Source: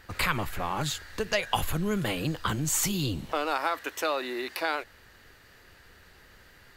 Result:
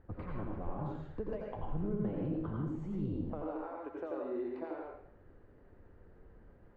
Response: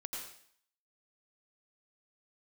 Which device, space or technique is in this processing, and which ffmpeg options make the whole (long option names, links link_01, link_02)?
television next door: -filter_complex "[0:a]acompressor=threshold=-31dB:ratio=6,lowpass=540[link_01];[1:a]atrim=start_sample=2205[link_02];[link_01][link_02]afir=irnorm=-1:irlink=0,volume=2dB"